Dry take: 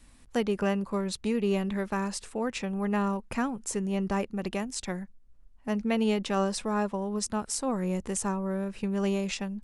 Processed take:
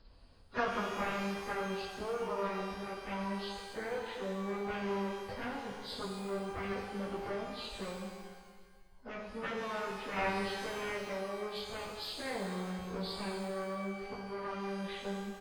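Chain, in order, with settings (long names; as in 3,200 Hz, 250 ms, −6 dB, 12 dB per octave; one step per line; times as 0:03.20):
hearing-aid frequency compression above 1,100 Hz 1.5 to 1
octave-band graphic EQ 250/500/2,000/4,000 Hz −9/+6/−9/−5 dB
in parallel at −2.5 dB: downward compressor 12 to 1, threshold −36 dBFS, peak gain reduction 14.5 dB
on the sum: harmonic generator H 3 −6 dB, 7 −44 dB, 8 −37 dB, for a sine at −15 dBFS
time stretch by phase vocoder 1.6×
repeating echo 241 ms, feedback 44%, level −16 dB
reverb with rising layers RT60 1.4 s, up +12 semitones, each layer −8 dB, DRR 1 dB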